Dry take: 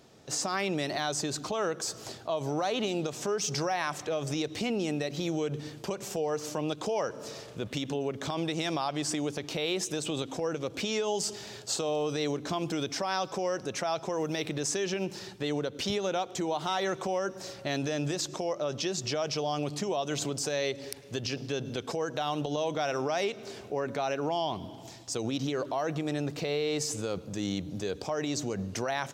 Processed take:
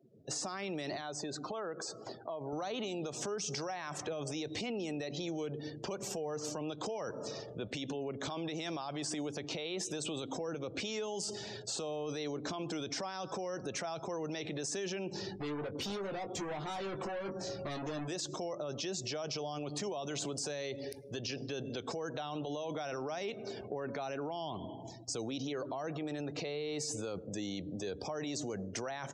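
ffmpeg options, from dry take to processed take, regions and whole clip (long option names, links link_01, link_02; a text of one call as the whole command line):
ffmpeg -i in.wav -filter_complex "[0:a]asettb=1/sr,asplit=3[link_01][link_02][link_03];[link_01]atrim=end=1.014[link_04];[link_02]atrim=start=1.01:end=2.53,asetpts=PTS-STARTPTS,afade=type=in:duration=0.004:curve=qsin,afade=type=out:start_time=1.516:duration=0.004:curve=qsin,highpass=frequency=240:poles=1,highshelf=frequency=4400:gain=-10,acompressor=threshold=-37dB:ratio=2.5:attack=3.2:release=140:knee=1:detection=peak[link_05];[link_03]atrim=start=2.526[link_06];[link_04][link_05]acrossfade=duration=0.004:curve1=hsin:curve2=qsin[link_07];[link_07][link_06]acrossfade=duration=0.004:curve1=qsin:curve2=hsin,asettb=1/sr,asplit=3[link_08][link_09][link_10];[link_08]atrim=end=15.124[link_11];[link_09]atrim=start=15.12:end=18.08,asetpts=PTS-STARTPTS,afade=type=in:duration=0.004:curve=qsin,afade=type=out:start_time=2.956:duration=0.004:curve=qsin,lowshelf=frequency=400:gain=7,volume=35.5dB,asoftclip=hard,volume=-35.5dB,asplit=2[link_12][link_13];[link_13]adelay=20,volume=-7dB[link_14];[link_12][link_14]amix=inputs=2:normalize=0,atrim=end_sample=130536[link_15];[link_10]atrim=start=18.076[link_16];[link_11][link_15]acrossfade=duration=0.004:curve1=hsin:curve2=qsin[link_17];[link_17][link_16]acrossfade=duration=0.004:curve1=qsin:curve2=hsin,afftdn=noise_reduction=34:noise_floor=-48,alimiter=level_in=3dB:limit=-24dB:level=0:latency=1:release=18,volume=-3dB,acrossover=split=260|7700[link_18][link_19][link_20];[link_18]acompressor=threshold=-47dB:ratio=4[link_21];[link_19]acompressor=threshold=-38dB:ratio=4[link_22];[link_20]acompressor=threshold=-49dB:ratio=4[link_23];[link_21][link_22][link_23]amix=inputs=3:normalize=0,volume=1dB" out.wav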